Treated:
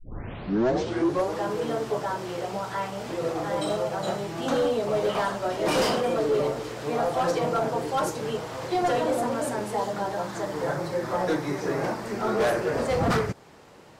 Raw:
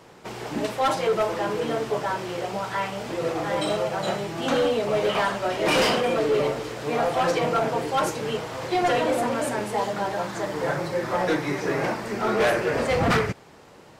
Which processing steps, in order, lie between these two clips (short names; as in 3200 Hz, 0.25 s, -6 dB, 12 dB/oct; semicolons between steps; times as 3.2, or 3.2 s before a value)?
tape start at the beginning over 1.40 s; dynamic EQ 2400 Hz, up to -7 dB, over -41 dBFS, Q 1.2; gain -1.5 dB